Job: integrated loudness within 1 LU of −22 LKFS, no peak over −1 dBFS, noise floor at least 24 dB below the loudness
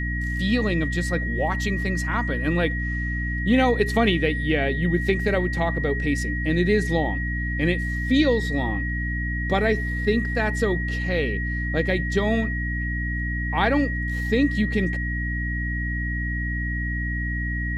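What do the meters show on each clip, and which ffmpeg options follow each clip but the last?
mains hum 60 Hz; hum harmonics up to 300 Hz; level of the hum −25 dBFS; interfering tone 1,900 Hz; level of the tone −29 dBFS; integrated loudness −23.5 LKFS; sample peak −6.0 dBFS; target loudness −22.0 LKFS
→ -af "bandreject=frequency=60:width_type=h:width=4,bandreject=frequency=120:width_type=h:width=4,bandreject=frequency=180:width_type=h:width=4,bandreject=frequency=240:width_type=h:width=4,bandreject=frequency=300:width_type=h:width=4"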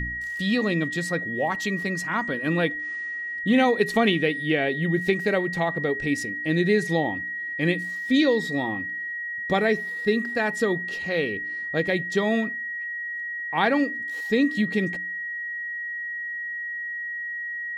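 mains hum none found; interfering tone 1,900 Hz; level of the tone −29 dBFS
→ -af "bandreject=frequency=1900:width=30"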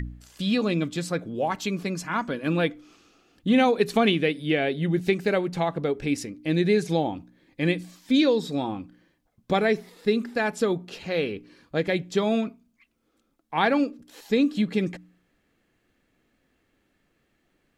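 interfering tone none found; integrated loudness −25.5 LKFS; sample peak −6.5 dBFS; target loudness −22.0 LKFS
→ -af "volume=3.5dB"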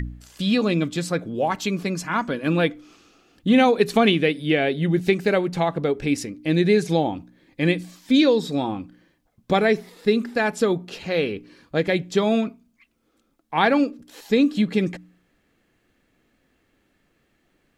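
integrated loudness −22.0 LKFS; sample peak −3.0 dBFS; background noise floor −68 dBFS

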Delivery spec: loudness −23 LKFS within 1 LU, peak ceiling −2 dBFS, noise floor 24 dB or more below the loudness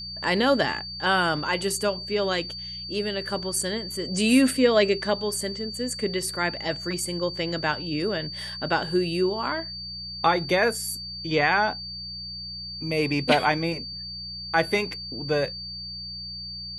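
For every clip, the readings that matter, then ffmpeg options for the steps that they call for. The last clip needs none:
mains hum 60 Hz; hum harmonics up to 180 Hz; level of the hum −42 dBFS; interfering tone 4,600 Hz; level of the tone −34 dBFS; integrated loudness −25.5 LKFS; sample peak −6.5 dBFS; target loudness −23.0 LKFS
→ -af "bandreject=frequency=60:width_type=h:width=4,bandreject=frequency=120:width_type=h:width=4,bandreject=frequency=180:width_type=h:width=4"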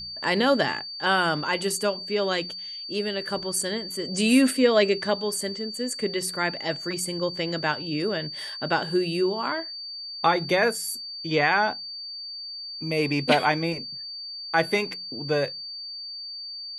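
mains hum none found; interfering tone 4,600 Hz; level of the tone −34 dBFS
→ -af "bandreject=frequency=4600:width=30"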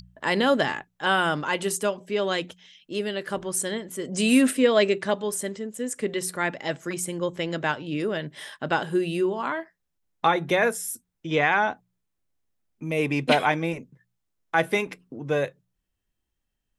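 interfering tone none found; integrated loudness −25.5 LKFS; sample peak −7.0 dBFS; target loudness −23.0 LKFS
→ -af "volume=2.5dB"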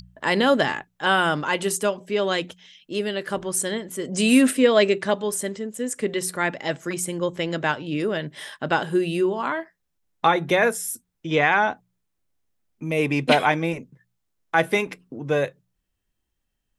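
integrated loudness −23.0 LKFS; sample peak −4.5 dBFS; background noise floor −76 dBFS

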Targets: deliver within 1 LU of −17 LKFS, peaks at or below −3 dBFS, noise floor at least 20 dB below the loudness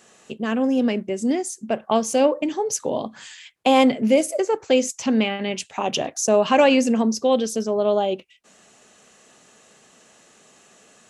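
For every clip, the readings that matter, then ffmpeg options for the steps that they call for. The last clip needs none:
integrated loudness −21.0 LKFS; sample peak −4.0 dBFS; target loudness −17.0 LKFS
→ -af "volume=4dB,alimiter=limit=-3dB:level=0:latency=1"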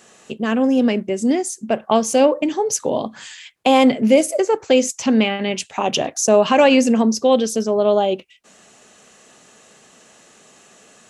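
integrated loudness −17.5 LKFS; sample peak −3.0 dBFS; background noise floor −50 dBFS

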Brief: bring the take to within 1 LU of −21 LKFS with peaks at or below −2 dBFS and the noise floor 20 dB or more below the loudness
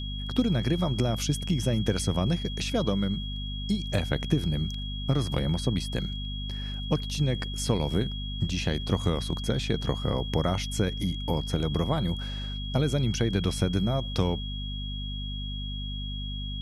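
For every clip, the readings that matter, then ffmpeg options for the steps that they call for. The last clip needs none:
mains hum 50 Hz; hum harmonics up to 250 Hz; level of the hum −32 dBFS; interfering tone 3,300 Hz; level of the tone −38 dBFS; integrated loudness −29.0 LKFS; sample peak −10.0 dBFS; target loudness −21.0 LKFS
→ -af "bandreject=frequency=50:width_type=h:width=4,bandreject=frequency=100:width_type=h:width=4,bandreject=frequency=150:width_type=h:width=4,bandreject=frequency=200:width_type=h:width=4,bandreject=frequency=250:width_type=h:width=4"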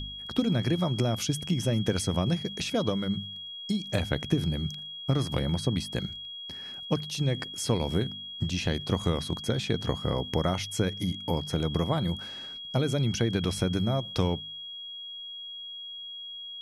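mains hum none found; interfering tone 3,300 Hz; level of the tone −38 dBFS
→ -af "bandreject=frequency=3300:width=30"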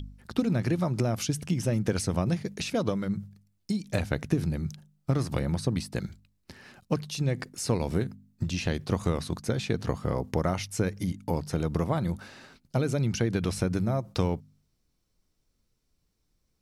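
interfering tone none found; integrated loudness −30.0 LKFS; sample peak −11.5 dBFS; target loudness −21.0 LKFS
→ -af "volume=9dB"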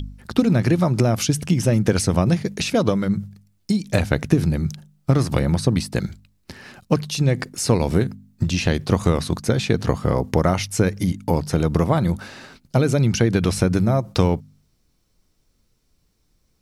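integrated loudness −21.0 LKFS; sample peak −2.5 dBFS; background noise floor −65 dBFS

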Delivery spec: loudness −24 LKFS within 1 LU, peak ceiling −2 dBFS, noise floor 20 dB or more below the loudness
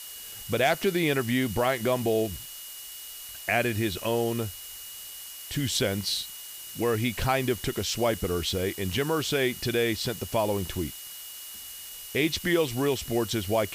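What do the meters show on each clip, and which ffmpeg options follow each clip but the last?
interfering tone 2,900 Hz; level of the tone −47 dBFS; background noise floor −42 dBFS; target noise floor −48 dBFS; integrated loudness −27.5 LKFS; sample peak −12.0 dBFS; target loudness −24.0 LKFS
→ -af "bandreject=frequency=2900:width=30"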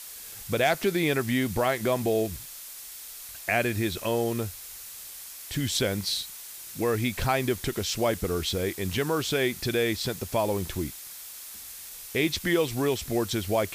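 interfering tone none found; background noise floor −43 dBFS; target noise floor −48 dBFS
→ -af "afftdn=noise_reduction=6:noise_floor=-43"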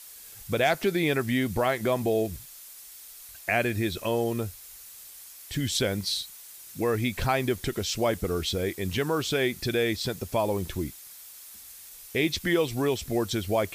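background noise floor −47 dBFS; target noise floor −48 dBFS
→ -af "afftdn=noise_reduction=6:noise_floor=-47"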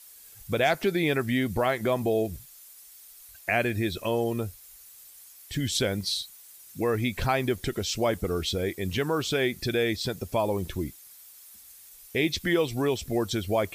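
background noise floor −51 dBFS; integrated loudness −28.0 LKFS; sample peak −12.5 dBFS; target loudness −24.0 LKFS
→ -af "volume=4dB"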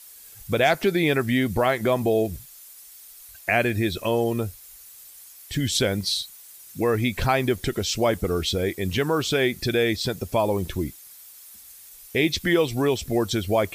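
integrated loudness −24.0 LKFS; sample peak −8.5 dBFS; background noise floor −47 dBFS

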